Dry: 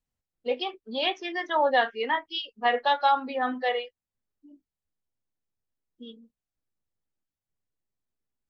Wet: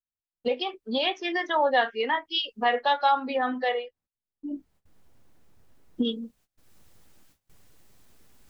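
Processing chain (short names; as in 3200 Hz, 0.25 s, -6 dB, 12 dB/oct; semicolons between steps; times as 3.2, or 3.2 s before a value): recorder AGC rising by 24 dB/s; gate -59 dBFS, range -22 dB; 3.74–6.05 high shelf 2100 Hz -10.5 dB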